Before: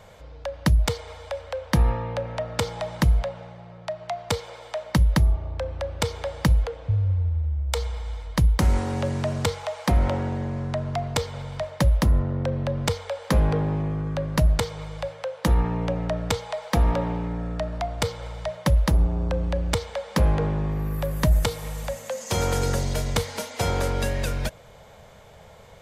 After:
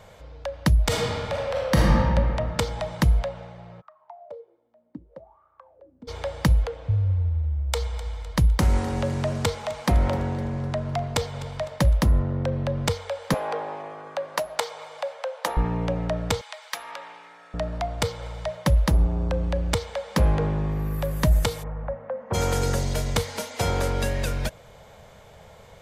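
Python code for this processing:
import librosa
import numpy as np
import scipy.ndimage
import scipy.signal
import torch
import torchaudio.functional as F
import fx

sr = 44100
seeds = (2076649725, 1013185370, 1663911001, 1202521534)

y = fx.reverb_throw(x, sr, start_s=0.85, length_s=1.07, rt60_s=2.2, drr_db=-4.5)
y = fx.wah_lfo(y, sr, hz=fx.line((3.8, 0.34), (6.07, 1.2)), low_hz=240.0, high_hz=1300.0, q=14.0, at=(3.8, 6.07), fade=0.02)
y = fx.echo_warbled(y, sr, ms=254, feedback_pct=50, rate_hz=2.8, cents=50, wet_db=-17.0, at=(7.52, 11.95))
y = fx.highpass_res(y, sr, hz=670.0, q=1.5, at=(13.34, 15.57))
y = fx.highpass(y, sr, hz=1400.0, slope=12, at=(16.41, 17.54))
y = fx.lowpass(y, sr, hz=1500.0, slope=24, at=(21.62, 22.33), fade=0.02)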